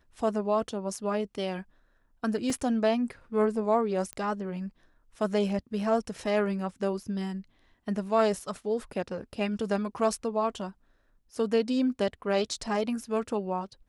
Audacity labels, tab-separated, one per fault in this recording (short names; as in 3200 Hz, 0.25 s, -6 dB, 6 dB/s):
2.500000	2.500000	gap 2.8 ms
4.130000	4.130000	pop -21 dBFS